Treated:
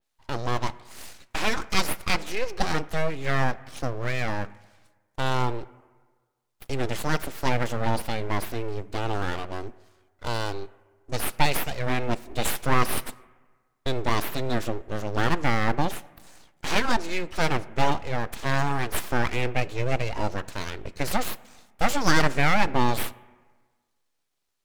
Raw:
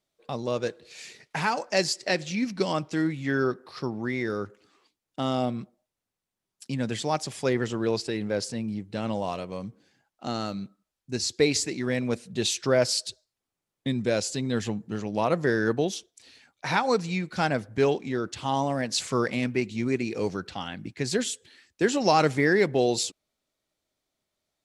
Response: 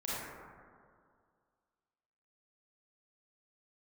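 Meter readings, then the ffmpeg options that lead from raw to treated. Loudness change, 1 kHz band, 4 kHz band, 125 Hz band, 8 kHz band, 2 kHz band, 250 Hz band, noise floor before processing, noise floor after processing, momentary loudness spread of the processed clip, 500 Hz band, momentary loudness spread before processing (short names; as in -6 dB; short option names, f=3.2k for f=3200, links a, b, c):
-0.5 dB, +3.0 dB, -0.5 dB, +3.0 dB, -2.5 dB, +3.0 dB, -3.5 dB, under -85 dBFS, -74 dBFS, 11 LU, -4.0 dB, 12 LU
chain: -filter_complex "[0:a]aeval=exprs='abs(val(0))':c=same,asplit=2[a][b];[1:a]atrim=start_sample=2205,asetrate=66150,aresample=44100[c];[b][c]afir=irnorm=-1:irlink=0,volume=-20dB[d];[a][d]amix=inputs=2:normalize=0,adynamicequalizer=threshold=0.00631:dfrequency=3400:dqfactor=0.7:tfrequency=3400:tqfactor=0.7:attack=5:release=100:ratio=0.375:range=2:mode=cutabove:tftype=highshelf,volume=3.5dB"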